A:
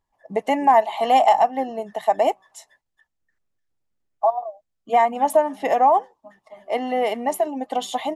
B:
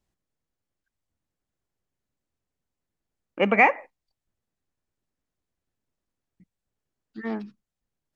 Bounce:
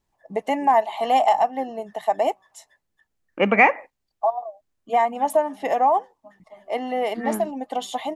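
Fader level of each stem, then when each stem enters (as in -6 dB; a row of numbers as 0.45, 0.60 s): -2.5, +2.5 dB; 0.00, 0.00 s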